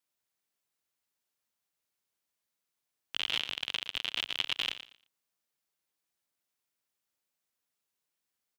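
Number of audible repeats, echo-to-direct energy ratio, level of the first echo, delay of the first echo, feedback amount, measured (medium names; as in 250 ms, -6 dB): 2, -12.5 dB, -12.5 dB, 116 ms, 22%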